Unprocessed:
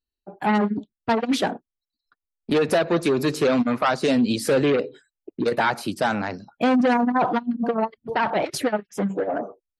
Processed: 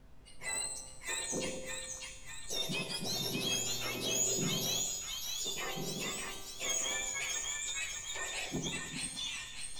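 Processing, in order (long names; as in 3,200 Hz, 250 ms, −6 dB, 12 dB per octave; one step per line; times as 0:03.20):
frequency axis turned over on the octave scale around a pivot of 1,300 Hz
parametric band 1,400 Hz −9 dB 0.9 octaves
sine wavefolder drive 6 dB, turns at −10.5 dBFS
echo with a time of its own for lows and highs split 920 Hz, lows 98 ms, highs 601 ms, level −4 dB
background noise brown −34 dBFS
tuned comb filter 250 Hz, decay 0.89 s, mix 60%
0:03.05–0:04.81: hum with harmonics 120 Hz, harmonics 9, −36 dBFS −4 dB per octave
tuned comb filter 130 Hz, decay 1.2 s, harmonics all, mix 80%
dynamic equaliser 860 Hz, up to −4 dB, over −54 dBFS, Q 0.87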